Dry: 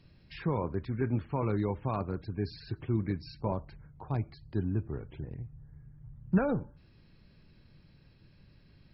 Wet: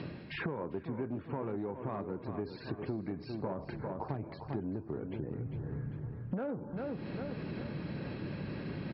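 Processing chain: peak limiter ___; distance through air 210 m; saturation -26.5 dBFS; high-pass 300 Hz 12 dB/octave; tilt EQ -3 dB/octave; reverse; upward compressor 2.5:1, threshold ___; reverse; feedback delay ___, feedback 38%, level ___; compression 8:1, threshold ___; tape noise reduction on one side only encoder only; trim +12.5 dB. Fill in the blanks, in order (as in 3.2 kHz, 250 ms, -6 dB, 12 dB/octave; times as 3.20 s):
-20.5 dBFS, -38 dBFS, 398 ms, -12 dB, -47 dBFS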